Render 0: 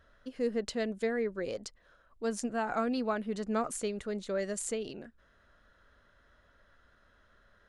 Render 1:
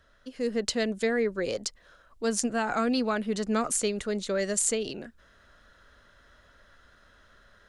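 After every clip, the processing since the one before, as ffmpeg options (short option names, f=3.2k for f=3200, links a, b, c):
-filter_complex "[0:a]equalizer=f=6.6k:t=o:w=2.4:g=6.5,acrossover=split=430|1100[a][b][c];[b]alimiter=level_in=8.5dB:limit=-24dB:level=0:latency=1,volume=-8.5dB[d];[a][d][c]amix=inputs=3:normalize=0,dynaudnorm=f=320:g=3:m=5.5dB"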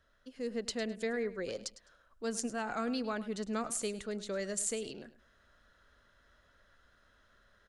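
-af "aecho=1:1:104|208:0.168|0.0369,volume=-8.5dB"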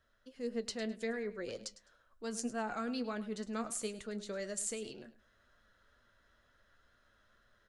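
-af "flanger=delay=8:depth=2:regen=59:speed=2:shape=triangular,volume=1dB"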